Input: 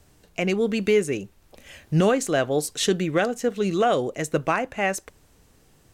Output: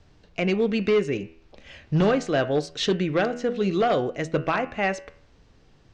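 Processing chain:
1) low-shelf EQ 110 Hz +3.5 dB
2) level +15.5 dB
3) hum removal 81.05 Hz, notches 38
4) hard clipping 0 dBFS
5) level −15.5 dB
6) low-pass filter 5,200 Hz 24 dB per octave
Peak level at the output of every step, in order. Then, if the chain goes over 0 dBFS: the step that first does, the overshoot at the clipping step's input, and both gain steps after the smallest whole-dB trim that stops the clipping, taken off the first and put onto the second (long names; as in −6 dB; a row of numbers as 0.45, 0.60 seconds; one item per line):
−10.0, +5.5, +6.5, 0.0, −15.5, −14.5 dBFS
step 2, 6.5 dB
step 2 +8.5 dB, step 5 −8.5 dB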